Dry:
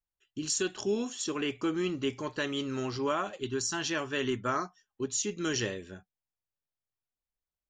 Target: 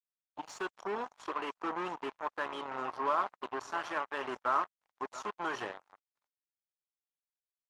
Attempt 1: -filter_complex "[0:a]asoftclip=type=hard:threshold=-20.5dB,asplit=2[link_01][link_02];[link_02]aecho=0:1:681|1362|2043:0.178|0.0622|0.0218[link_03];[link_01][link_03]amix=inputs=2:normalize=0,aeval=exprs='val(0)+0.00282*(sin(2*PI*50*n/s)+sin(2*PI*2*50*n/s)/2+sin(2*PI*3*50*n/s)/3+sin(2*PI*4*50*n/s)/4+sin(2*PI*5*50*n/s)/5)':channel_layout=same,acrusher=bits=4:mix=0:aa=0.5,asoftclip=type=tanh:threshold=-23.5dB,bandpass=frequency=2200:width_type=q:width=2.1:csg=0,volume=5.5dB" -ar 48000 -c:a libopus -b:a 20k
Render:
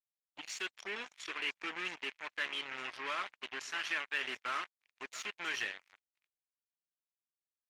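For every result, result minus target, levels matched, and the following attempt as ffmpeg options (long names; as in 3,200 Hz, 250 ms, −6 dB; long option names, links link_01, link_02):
soft clipping: distortion +16 dB; 1,000 Hz band −8.0 dB
-filter_complex "[0:a]asoftclip=type=hard:threshold=-20.5dB,asplit=2[link_01][link_02];[link_02]aecho=0:1:681|1362|2043:0.178|0.0622|0.0218[link_03];[link_01][link_03]amix=inputs=2:normalize=0,aeval=exprs='val(0)+0.00282*(sin(2*PI*50*n/s)+sin(2*PI*2*50*n/s)/2+sin(2*PI*3*50*n/s)/3+sin(2*PI*4*50*n/s)/4+sin(2*PI*5*50*n/s)/5)':channel_layout=same,acrusher=bits=4:mix=0:aa=0.5,asoftclip=type=tanh:threshold=-14.5dB,bandpass=frequency=2200:width_type=q:width=2.1:csg=0,volume=5.5dB" -ar 48000 -c:a libopus -b:a 20k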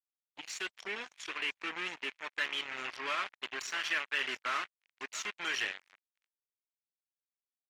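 1,000 Hz band −8.5 dB
-filter_complex "[0:a]asoftclip=type=hard:threshold=-20.5dB,asplit=2[link_01][link_02];[link_02]aecho=0:1:681|1362|2043:0.178|0.0622|0.0218[link_03];[link_01][link_03]amix=inputs=2:normalize=0,aeval=exprs='val(0)+0.00282*(sin(2*PI*50*n/s)+sin(2*PI*2*50*n/s)/2+sin(2*PI*3*50*n/s)/3+sin(2*PI*4*50*n/s)/4+sin(2*PI*5*50*n/s)/5)':channel_layout=same,acrusher=bits=4:mix=0:aa=0.5,asoftclip=type=tanh:threshold=-14.5dB,bandpass=frequency=1000:width_type=q:width=2.1:csg=0,volume=5.5dB" -ar 48000 -c:a libopus -b:a 20k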